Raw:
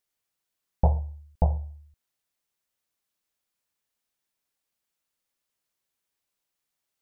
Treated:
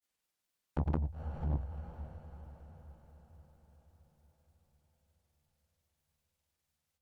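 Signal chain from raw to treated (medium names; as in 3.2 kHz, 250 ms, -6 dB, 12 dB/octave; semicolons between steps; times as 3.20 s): one-sided clip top -29.5 dBFS, bottom -13 dBFS; granulator, pitch spread up and down by 0 st; on a send: echo that smears into a reverb 483 ms, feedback 56%, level -13 dB; on the sum: transformer saturation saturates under 360 Hz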